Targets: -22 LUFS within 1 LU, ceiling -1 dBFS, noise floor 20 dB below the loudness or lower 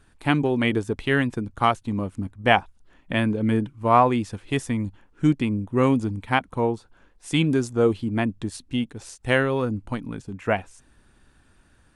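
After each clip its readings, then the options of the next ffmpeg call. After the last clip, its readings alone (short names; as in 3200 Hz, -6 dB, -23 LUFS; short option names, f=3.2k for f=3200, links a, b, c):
loudness -24.0 LUFS; peak -1.5 dBFS; loudness target -22.0 LUFS
-> -af "volume=2dB,alimiter=limit=-1dB:level=0:latency=1"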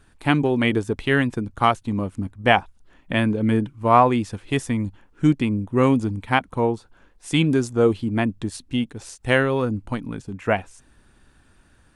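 loudness -22.0 LUFS; peak -1.0 dBFS; noise floor -57 dBFS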